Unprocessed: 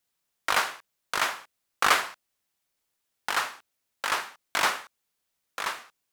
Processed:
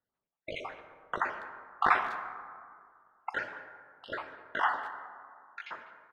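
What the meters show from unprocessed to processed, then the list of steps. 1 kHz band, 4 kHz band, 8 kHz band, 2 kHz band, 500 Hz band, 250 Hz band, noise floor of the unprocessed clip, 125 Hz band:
−3.0 dB, −17.5 dB, below −30 dB, −6.0 dB, −4.0 dB, −2.5 dB, −80 dBFS, −1.5 dB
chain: time-frequency cells dropped at random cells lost 57%
low-pass filter 1,500 Hz 12 dB per octave
far-end echo of a speakerphone 200 ms, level −17 dB
dense smooth reverb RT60 2.1 s, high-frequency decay 0.4×, DRR 7.5 dB

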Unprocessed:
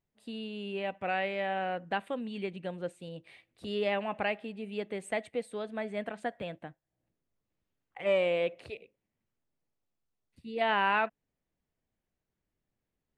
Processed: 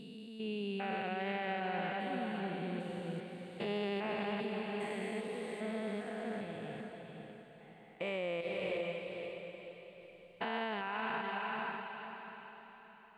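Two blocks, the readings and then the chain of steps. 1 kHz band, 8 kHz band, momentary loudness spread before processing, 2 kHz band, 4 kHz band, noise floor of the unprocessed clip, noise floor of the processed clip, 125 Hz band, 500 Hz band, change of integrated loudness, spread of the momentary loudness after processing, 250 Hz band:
−5.0 dB, −4.5 dB, 18 LU, −5.0 dB, −3.5 dB, below −85 dBFS, −57 dBFS, +1.0 dB, −5.5 dB, −6.0 dB, 15 LU, 0.0 dB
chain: spectrum averaged block by block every 400 ms
parametric band 590 Hz −8 dB 0.21 octaves
feedback delay with all-pass diffusion 509 ms, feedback 43%, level −4.5 dB
brickwall limiter −29 dBFS, peak gain reduction 8 dB
level +1 dB

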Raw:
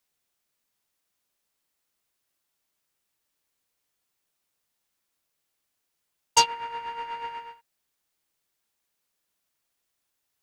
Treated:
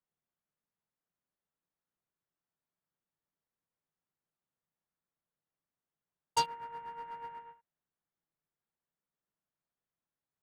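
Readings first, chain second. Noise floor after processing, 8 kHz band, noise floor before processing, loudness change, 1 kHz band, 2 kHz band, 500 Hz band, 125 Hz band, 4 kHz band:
below −85 dBFS, −16.5 dB, −80 dBFS, −11.5 dB, −9.0 dB, −14.0 dB, −8.5 dB, −3.0 dB, −13.5 dB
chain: adaptive Wiener filter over 9 samples
graphic EQ with 15 bands 160 Hz +9 dB, 2,500 Hz −7 dB, 6,300 Hz −9 dB
level −8.5 dB

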